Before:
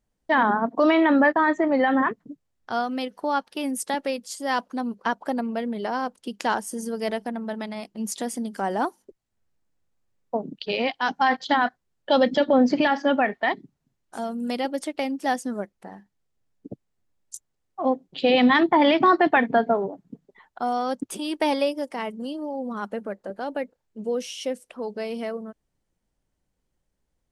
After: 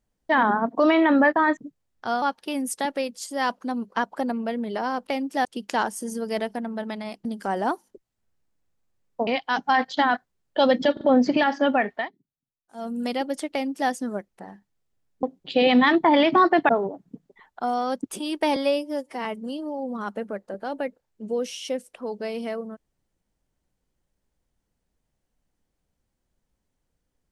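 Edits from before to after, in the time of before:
1.57–2.22 s: delete
2.87–3.31 s: delete
7.96–8.39 s: delete
10.41–10.79 s: delete
12.45 s: stutter 0.04 s, 3 plays
13.39–14.31 s: dip -21 dB, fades 0.14 s
14.96–15.34 s: copy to 6.16 s
16.67–17.91 s: delete
19.37–19.68 s: delete
21.55–22.01 s: stretch 1.5×

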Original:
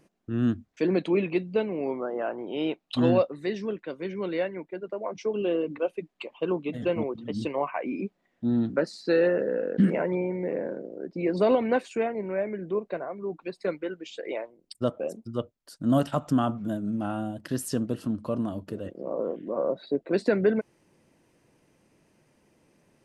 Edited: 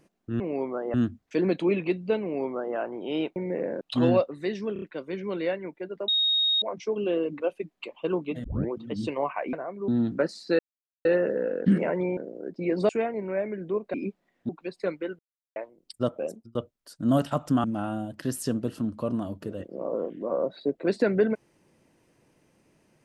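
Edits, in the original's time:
1.68–2.22 s: copy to 0.40 s
3.74 s: stutter 0.03 s, 4 plays
5.00 s: add tone 3.74 kHz -20.5 dBFS 0.54 s
6.82 s: tape start 0.27 s
7.91–8.46 s: swap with 12.95–13.30 s
9.17 s: insert silence 0.46 s
10.29–10.74 s: move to 2.82 s
11.46–11.90 s: delete
14.00–14.37 s: mute
15.11–15.36 s: fade out
16.45–16.90 s: delete

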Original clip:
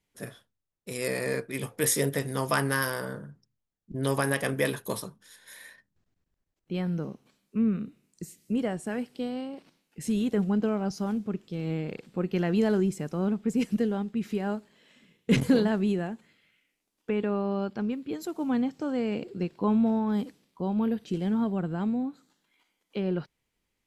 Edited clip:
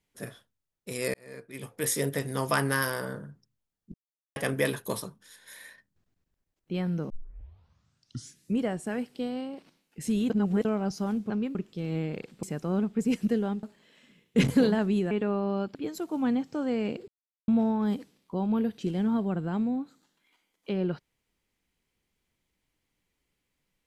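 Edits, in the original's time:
1.14–2.73 s: fade in equal-power
3.94–4.36 s: mute
7.10 s: tape start 1.49 s
10.30–10.65 s: reverse
12.18–12.92 s: delete
14.12–14.56 s: delete
16.04–17.13 s: delete
17.77–18.02 s: move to 11.30 s
19.35–19.75 s: mute

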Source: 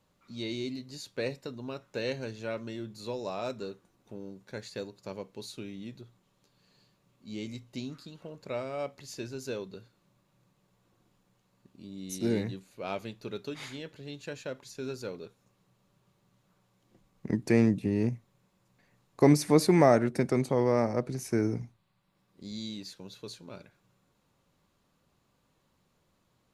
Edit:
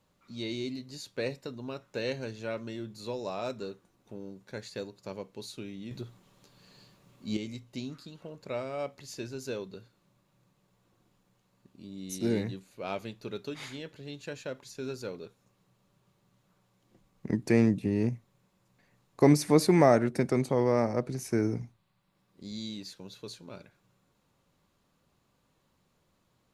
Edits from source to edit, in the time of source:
5.91–7.37 s: gain +8.5 dB

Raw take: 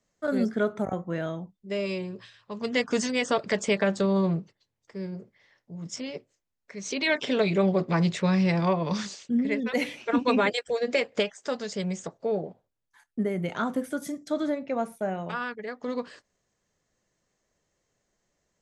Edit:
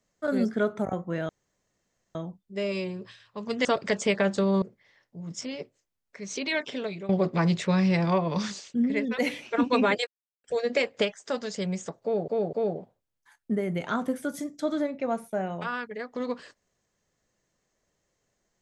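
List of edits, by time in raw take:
1.29 s: insert room tone 0.86 s
2.79–3.27 s: delete
4.24–5.17 s: delete
6.77–7.64 s: fade out, to -18 dB
10.62 s: insert silence 0.37 s
12.21–12.46 s: loop, 3 plays

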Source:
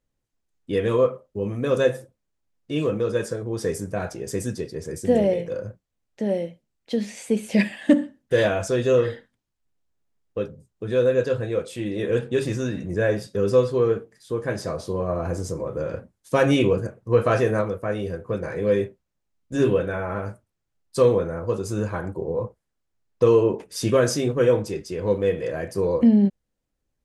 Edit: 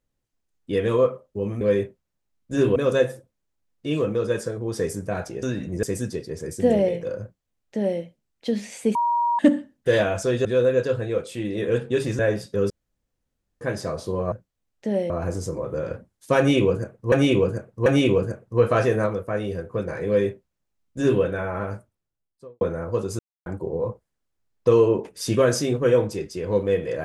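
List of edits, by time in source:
5.67–6.45 s: copy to 15.13 s
7.40–7.84 s: bleep 950 Hz -18.5 dBFS
8.90–10.86 s: delete
12.60–13.00 s: move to 4.28 s
13.51–14.42 s: room tone
16.41–17.15 s: loop, 3 plays
18.62–19.77 s: copy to 1.61 s
20.28–21.16 s: studio fade out
21.74–22.01 s: mute

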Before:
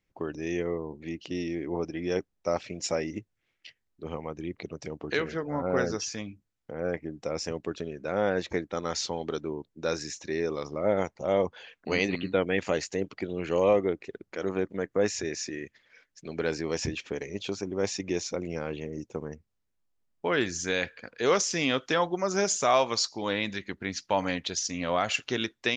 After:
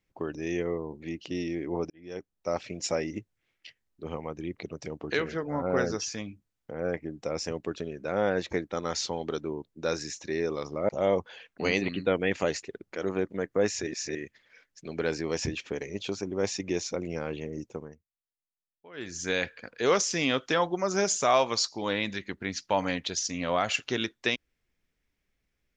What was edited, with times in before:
1.90–2.68 s: fade in
10.89–11.16 s: delete
12.90–14.03 s: delete
15.27–15.55 s: reverse
19.05–20.71 s: dip -22.5 dB, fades 0.38 s

